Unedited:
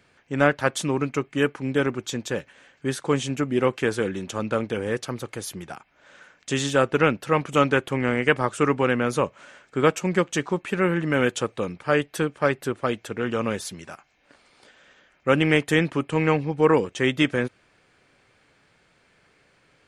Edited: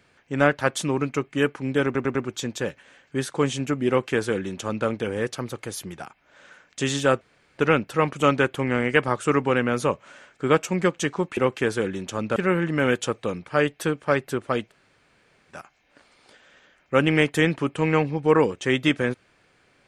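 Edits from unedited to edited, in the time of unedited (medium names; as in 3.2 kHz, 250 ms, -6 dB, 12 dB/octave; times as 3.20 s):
1.85 s: stutter 0.10 s, 4 plays
3.58–4.57 s: copy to 10.70 s
6.91 s: insert room tone 0.37 s
13.03–13.86 s: room tone, crossfade 0.06 s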